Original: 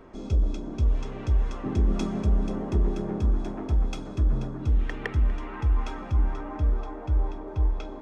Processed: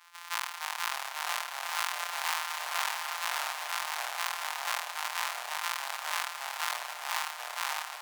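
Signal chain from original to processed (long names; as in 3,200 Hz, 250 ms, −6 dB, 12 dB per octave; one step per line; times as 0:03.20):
samples sorted by size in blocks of 256 samples
elliptic high-pass filter 960 Hz, stop band 80 dB
delay with pitch and tempo change per echo 264 ms, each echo −2 semitones, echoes 3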